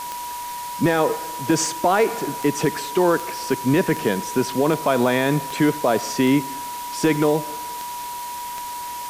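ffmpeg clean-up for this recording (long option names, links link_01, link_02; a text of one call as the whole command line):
ffmpeg -i in.wav -af "adeclick=threshold=4,bandreject=frequency=970:width=30,afwtdn=0.016" out.wav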